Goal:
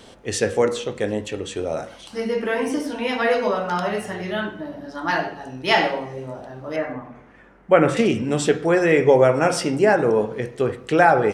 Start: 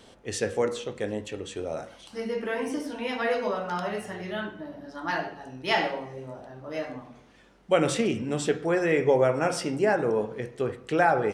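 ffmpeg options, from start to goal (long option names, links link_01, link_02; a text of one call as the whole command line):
ffmpeg -i in.wav -filter_complex "[0:a]asettb=1/sr,asplit=3[link_01][link_02][link_03];[link_01]atrim=end=6.764[link_04];[link_02]atrim=start=6.76:end=7.97,asetpts=PTS-STARTPTS,afade=type=in:duration=0.004:curve=qsin,afade=type=out:start_time=1.206:duration=0.004:curve=qsin,highshelf=frequency=2700:width_type=q:width=1.5:gain=-12[link_05];[link_03]atrim=start=7.966[link_06];[link_04][link_05]acrossfade=duration=0.004:curve1=hsin:curve2=qsin[link_07];[link_07][link_06]acrossfade=duration=0.004:curve1=qsin:curve2=hsin,volume=7dB" out.wav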